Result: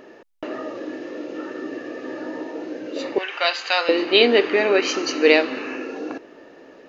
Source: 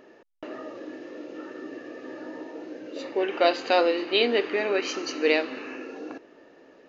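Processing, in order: 3.18–3.89 s: high-pass 1.2 kHz 12 dB/octave; trim +7.5 dB

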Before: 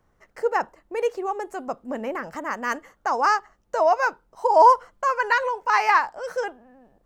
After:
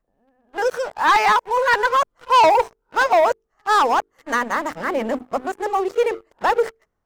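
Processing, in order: reverse the whole clip; hum notches 50/100/150/200/250/300/350/400/450 Hz; waveshaping leveller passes 3; trim -4 dB

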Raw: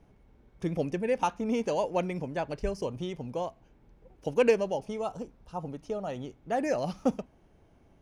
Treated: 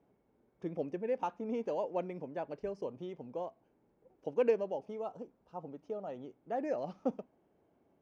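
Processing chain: band-pass 370–7900 Hz; tilt EQ -4 dB/octave; trim -8.5 dB

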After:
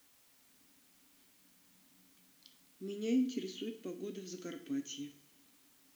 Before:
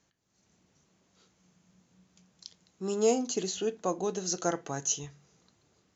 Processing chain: vowel filter i; two-slope reverb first 0.45 s, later 1.8 s, from -18 dB, DRR 7 dB; word length cut 12-bit, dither triangular; trim +5 dB

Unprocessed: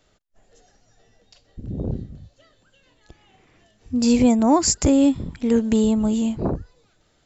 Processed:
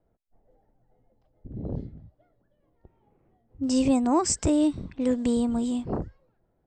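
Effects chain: speed mistake 44.1 kHz file played as 48 kHz; level-controlled noise filter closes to 710 Hz, open at -17 dBFS; trim -6 dB

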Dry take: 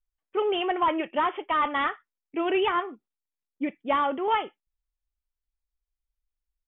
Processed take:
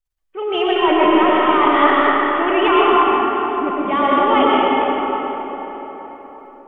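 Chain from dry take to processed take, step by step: 2.69–3.81 s: resonant high shelf 1.6 kHz -7 dB, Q 3; transient shaper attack -4 dB, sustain +9 dB; level rider gain up to 7 dB; reverberation RT60 4.5 s, pre-delay 70 ms, DRR -6 dB; trim -1.5 dB

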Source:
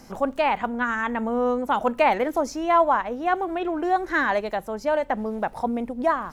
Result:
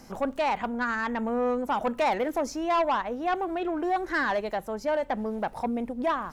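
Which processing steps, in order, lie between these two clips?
saturation -17.5 dBFS, distortion -14 dB; trim -2 dB

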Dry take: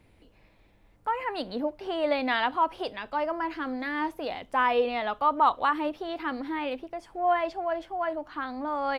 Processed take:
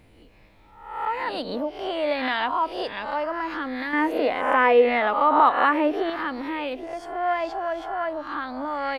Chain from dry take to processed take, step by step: reverse spectral sustain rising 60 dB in 0.66 s; in parallel at +0.5 dB: compression, threshold -32 dBFS, peak gain reduction 16 dB; 3.93–6.10 s: on the sum: graphic EQ 125/250/500/2000/4000 Hz -11/+9/+7/+9/-4 dB; trim -3 dB

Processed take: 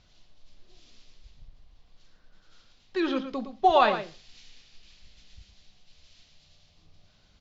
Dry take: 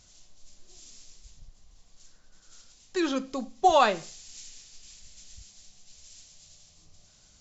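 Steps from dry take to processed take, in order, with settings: low-pass 4.1 kHz 24 dB/octave; delay 113 ms -10 dB

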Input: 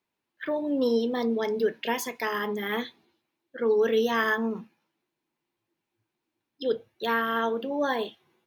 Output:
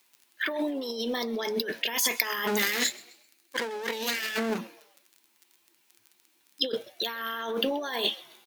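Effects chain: 2.47–4.58 s: comb filter that takes the minimum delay 0.46 ms; Chebyshev high-pass 210 Hz, order 2; crackle 22 per s -59 dBFS; tilt shelf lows -6 dB, about 880 Hz; compressor with a negative ratio -36 dBFS, ratio -1; treble shelf 3.7 kHz +9 dB; frequency-shifting echo 130 ms, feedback 38%, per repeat +120 Hz, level -22 dB; trim +4 dB

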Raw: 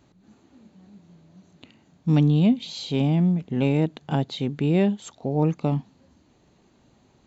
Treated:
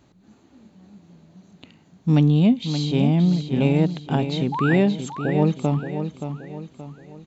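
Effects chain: painted sound rise, 4.52–4.76 s, 800–2100 Hz -28 dBFS; feedback delay 575 ms, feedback 41%, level -8.5 dB; trim +2 dB

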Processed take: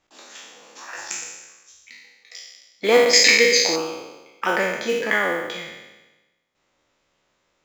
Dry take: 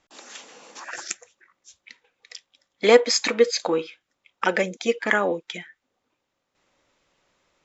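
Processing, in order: spectral sustain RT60 1.13 s; 3.13–3.76 s: resonant high shelf 1.6 kHz +7 dB, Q 3; modulation noise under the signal 28 dB; trim -3.5 dB

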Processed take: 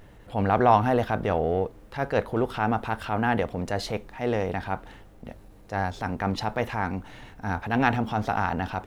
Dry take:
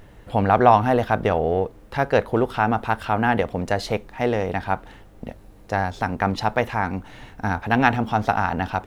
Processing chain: transient shaper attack -6 dB, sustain +1 dB; trim -3 dB

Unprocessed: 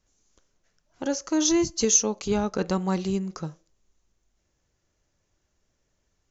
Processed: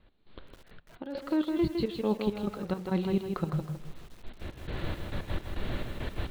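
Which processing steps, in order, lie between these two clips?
recorder AGC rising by 18 dB/s; steep low-pass 4.2 kHz 96 dB/octave; bass shelf 420 Hz +4 dB; hum notches 50/100/150 Hz; reverse; compression 10:1, threshold -33 dBFS, peak gain reduction 19 dB; reverse; trance gate "x..xxx..x." 170 bpm -12 dB; bit-crushed delay 159 ms, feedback 35%, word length 10-bit, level -5 dB; trim +8.5 dB

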